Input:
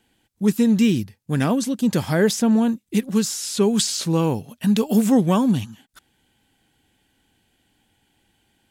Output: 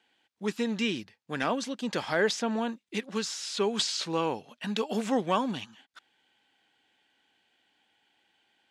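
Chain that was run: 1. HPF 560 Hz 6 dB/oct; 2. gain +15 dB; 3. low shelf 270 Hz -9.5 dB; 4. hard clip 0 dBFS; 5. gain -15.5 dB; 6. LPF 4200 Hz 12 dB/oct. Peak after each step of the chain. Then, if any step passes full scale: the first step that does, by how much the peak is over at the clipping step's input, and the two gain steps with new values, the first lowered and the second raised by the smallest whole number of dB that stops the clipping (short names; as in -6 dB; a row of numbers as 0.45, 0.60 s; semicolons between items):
-8.5, +6.5, +6.5, 0.0, -15.5, -15.0 dBFS; step 2, 6.5 dB; step 2 +8 dB, step 5 -8.5 dB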